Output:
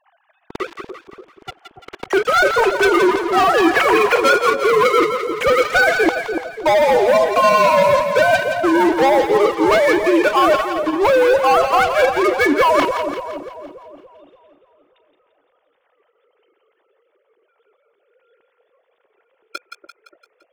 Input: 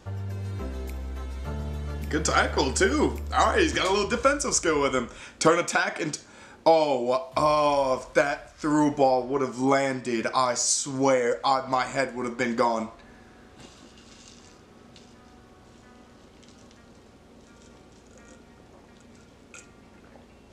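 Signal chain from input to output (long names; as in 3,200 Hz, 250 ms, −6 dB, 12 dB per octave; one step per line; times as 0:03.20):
three sine waves on the formant tracks
leveller curve on the samples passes 5
reversed playback
downward compressor 6 to 1, threshold −21 dBFS, peak gain reduction 13.5 dB
reversed playback
echo with a time of its own for lows and highs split 880 Hz, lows 289 ms, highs 171 ms, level −7 dB
level +7 dB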